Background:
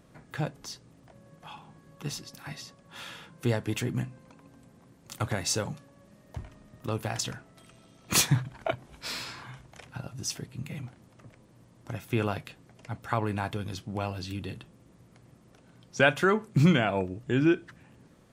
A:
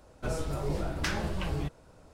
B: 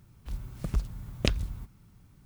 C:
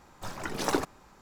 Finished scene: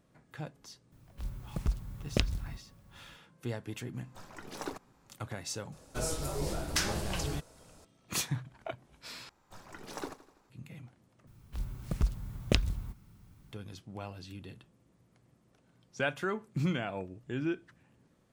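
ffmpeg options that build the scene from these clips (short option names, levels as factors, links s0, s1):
-filter_complex "[2:a]asplit=2[s0][s1];[3:a]asplit=2[s2][s3];[0:a]volume=0.316[s4];[1:a]bass=f=250:g=-2,treble=f=4000:g=12[s5];[s3]aecho=1:1:83|166|249|332|415:0.158|0.0872|0.0479|0.0264|0.0145[s6];[s4]asplit=3[s7][s8][s9];[s7]atrim=end=9.294[s10];[s6]atrim=end=1.21,asetpts=PTS-STARTPTS,volume=0.224[s11];[s8]atrim=start=10.496:end=11.274[s12];[s1]atrim=end=2.25,asetpts=PTS-STARTPTS,volume=0.944[s13];[s9]atrim=start=13.516[s14];[s0]atrim=end=2.25,asetpts=PTS-STARTPTS,volume=0.75,afade=t=in:d=0.004:c=hsin,afade=t=out:st=2.246:d=0.004:c=hsin,adelay=920[s15];[s2]atrim=end=1.21,asetpts=PTS-STARTPTS,volume=0.251,afade=t=in:d=0.004:c=hsin,afade=t=out:st=1.206:d=0.004:c=hsin,adelay=173313S[s16];[s5]atrim=end=2.13,asetpts=PTS-STARTPTS,volume=0.794,afade=t=in:d=0.004:c=hsin,afade=t=out:st=2.126:d=0.004:c=hsin,adelay=5720[s17];[s10][s11]acrossfade=d=0.004:c1=hsin:c2=hsin[s18];[s18][s12]acrossfade=d=0.004:c1=hsin:c2=hsin[s19];[s19][s13]acrossfade=d=0.004:c1=hsin:c2=hsin[s20];[s20][s14]acrossfade=d=0.004:c1=hsin:c2=hsin[s21];[s21][s15][s16][s17]amix=inputs=4:normalize=0"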